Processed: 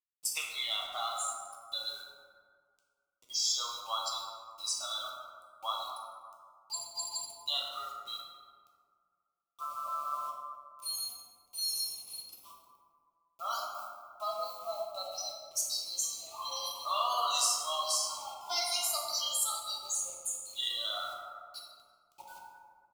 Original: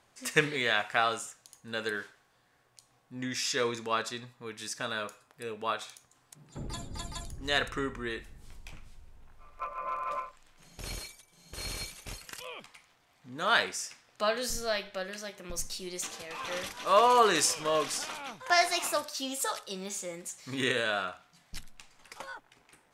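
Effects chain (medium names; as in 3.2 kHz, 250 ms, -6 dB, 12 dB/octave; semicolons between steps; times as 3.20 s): 12.34–14.94 s: median filter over 15 samples; spectral noise reduction 29 dB; high-pass 920 Hz 24 dB/octave; treble shelf 2.3 kHz +7.5 dB; comb 1.5 ms, depth 46%; compression 2.5:1, threshold -37 dBFS, peak gain reduction 14.5 dB; Chebyshev shaper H 5 -22 dB, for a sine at -16 dBFS; bit crusher 9-bit; Butterworth band-stop 1.7 kHz, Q 1.4; plate-style reverb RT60 2 s, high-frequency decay 0.4×, DRR -2 dB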